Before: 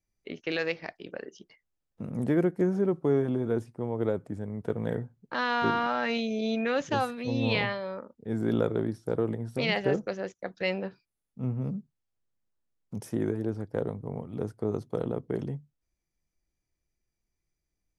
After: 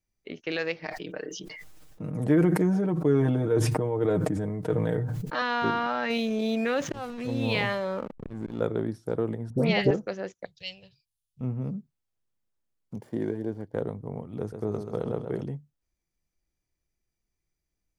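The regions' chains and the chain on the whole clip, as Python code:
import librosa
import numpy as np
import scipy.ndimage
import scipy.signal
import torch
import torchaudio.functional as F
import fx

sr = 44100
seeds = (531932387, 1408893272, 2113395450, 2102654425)

y = fx.chain(x, sr, fx.comb(ms=6.5, depth=0.72),
    fx.sustainer(db_per_s=20.0), at=(0.8, 5.42))
y = fx.chain(y, sr, fx.auto_swell(attack_ms=665.0),
    fx.backlash(play_db=-45.0),
    fx.env_flatten(amount_pct=50), at=(6.1, 8.61))
y = fx.chain(y, sr, fx.low_shelf(hz=450.0, db=9.0),
    fx.dispersion(late='highs', ms=81.0, hz=1400.0), at=(9.5, 9.91))
y = fx.chain(y, sr, fx.curve_eq(hz=(150.0, 220.0, 580.0, 1500.0, 3000.0), db=(0, -30, -20, -28, 2)),
    fx.doppler_dist(depth_ms=0.27), at=(10.45, 11.41))
y = fx.chain(y, sr, fx.median_filter(points=15),
    fx.notch_comb(f0_hz=1300.0), at=(12.96, 13.74))
y = fx.chain(y, sr, fx.peak_eq(hz=270.0, db=-4.0, octaves=0.28),
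    fx.echo_warbled(ms=131, feedback_pct=52, rate_hz=2.8, cents=50, wet_db=-7.5), at=(14.39, 15.42))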